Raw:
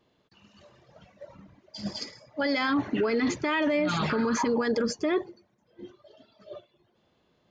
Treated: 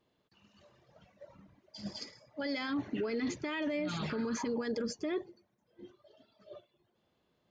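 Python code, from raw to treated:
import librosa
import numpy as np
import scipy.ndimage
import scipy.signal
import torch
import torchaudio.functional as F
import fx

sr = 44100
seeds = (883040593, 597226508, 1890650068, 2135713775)

y = fx.dynamic_eq(x, sr, hz=1100.0, q=0.93, threshold_db=-42.0, ratio=4.0, max_db=-6)
y = y * 10.0 ** (-7.5 / 20.0)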